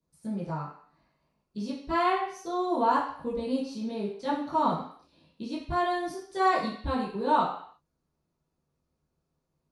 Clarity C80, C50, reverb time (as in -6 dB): 8.0 dB, 4.5 dB, 0.55 s